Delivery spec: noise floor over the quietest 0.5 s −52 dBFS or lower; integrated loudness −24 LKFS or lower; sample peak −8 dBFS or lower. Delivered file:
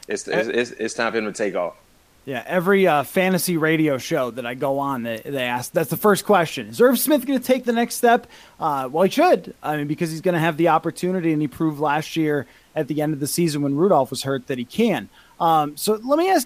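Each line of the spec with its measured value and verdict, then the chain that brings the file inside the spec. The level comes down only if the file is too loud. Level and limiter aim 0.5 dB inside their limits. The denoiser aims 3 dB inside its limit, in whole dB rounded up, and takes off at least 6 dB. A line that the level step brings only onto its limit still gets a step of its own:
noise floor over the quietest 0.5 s −54 dBFS: in spec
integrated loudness −21.0 LKFS: out of spec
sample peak −4.5 dBFS: out of spec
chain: level −3.5 dB
brickwall limiter −8.5 dBFS

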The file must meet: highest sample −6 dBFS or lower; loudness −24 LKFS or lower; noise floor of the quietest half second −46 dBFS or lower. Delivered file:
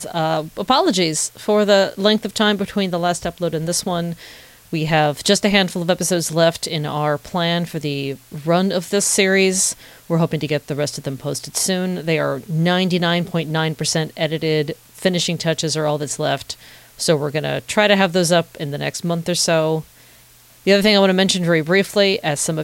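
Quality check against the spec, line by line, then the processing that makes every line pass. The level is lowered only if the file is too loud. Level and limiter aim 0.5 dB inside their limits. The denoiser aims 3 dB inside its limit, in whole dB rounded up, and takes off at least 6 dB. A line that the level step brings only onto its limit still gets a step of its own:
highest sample −3.0 dBFS: out of spec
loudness −18.5 LKFS: out of spec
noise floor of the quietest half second −48 dBFS: in spec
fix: level −6 dB

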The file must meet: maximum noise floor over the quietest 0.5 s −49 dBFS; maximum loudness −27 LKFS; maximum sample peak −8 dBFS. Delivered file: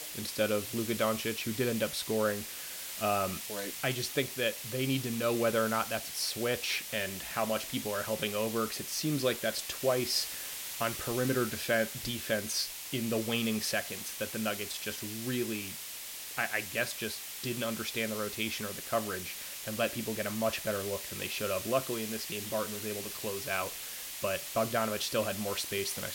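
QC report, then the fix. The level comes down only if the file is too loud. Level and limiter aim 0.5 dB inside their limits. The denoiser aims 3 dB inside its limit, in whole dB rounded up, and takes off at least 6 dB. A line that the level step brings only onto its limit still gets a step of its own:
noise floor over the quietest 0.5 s −43 dBFS: out of spec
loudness −33.0 LKFS: in spec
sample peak −15.5 dBFS: in spec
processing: broadband denoise 9 dB, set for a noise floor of −43 dBFS

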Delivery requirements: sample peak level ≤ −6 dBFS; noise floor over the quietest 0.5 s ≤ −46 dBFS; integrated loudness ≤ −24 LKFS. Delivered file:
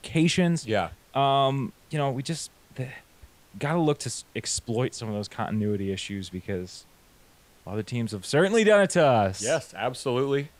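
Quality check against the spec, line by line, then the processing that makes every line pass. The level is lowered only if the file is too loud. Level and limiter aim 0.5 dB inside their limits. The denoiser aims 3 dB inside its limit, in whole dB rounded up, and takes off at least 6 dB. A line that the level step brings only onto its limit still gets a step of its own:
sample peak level −8.0 dBFS: in spec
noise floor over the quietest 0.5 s −57 dBFS: in spec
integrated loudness −26.0 LKFS: in spec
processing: no processing needed

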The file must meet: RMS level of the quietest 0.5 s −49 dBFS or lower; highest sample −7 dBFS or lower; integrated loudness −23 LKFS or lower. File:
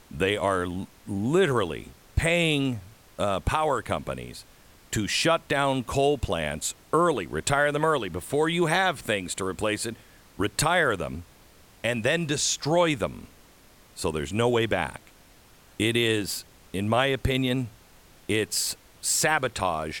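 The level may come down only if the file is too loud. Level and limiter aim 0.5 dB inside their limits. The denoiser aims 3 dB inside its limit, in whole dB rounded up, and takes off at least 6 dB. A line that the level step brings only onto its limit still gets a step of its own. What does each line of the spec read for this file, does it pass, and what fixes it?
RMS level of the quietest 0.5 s −54 dBFS: in spec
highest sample −9.5 dBFS: in spec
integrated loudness −26.0 LKFS: in spec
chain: no processing needed

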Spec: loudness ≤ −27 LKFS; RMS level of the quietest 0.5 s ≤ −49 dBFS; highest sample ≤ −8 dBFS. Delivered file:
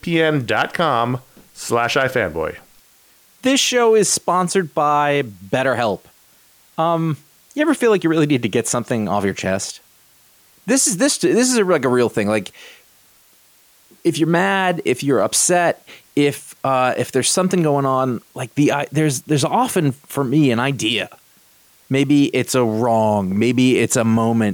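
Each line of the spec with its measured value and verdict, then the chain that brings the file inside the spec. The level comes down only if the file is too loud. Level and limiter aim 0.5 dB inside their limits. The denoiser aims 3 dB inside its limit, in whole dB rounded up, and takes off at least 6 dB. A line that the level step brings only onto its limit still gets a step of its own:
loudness −17.5 LKFS: out of spec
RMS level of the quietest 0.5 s −53 dBFS: in spec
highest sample −5.5 dBFS: out of spec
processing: level −10 dB

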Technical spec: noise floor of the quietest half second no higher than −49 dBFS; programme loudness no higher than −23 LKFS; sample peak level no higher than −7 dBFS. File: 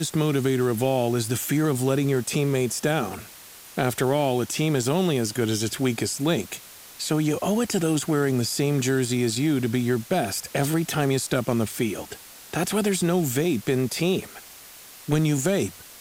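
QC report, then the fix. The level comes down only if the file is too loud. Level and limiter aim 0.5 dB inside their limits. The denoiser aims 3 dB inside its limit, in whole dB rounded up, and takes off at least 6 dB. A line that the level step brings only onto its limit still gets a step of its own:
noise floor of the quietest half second −45 dBFS: out of spec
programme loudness −24.0 LKFS: in spec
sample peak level −8.0 dBFS: in spec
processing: broadband denoise 7 dB, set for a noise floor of −45 dBFS

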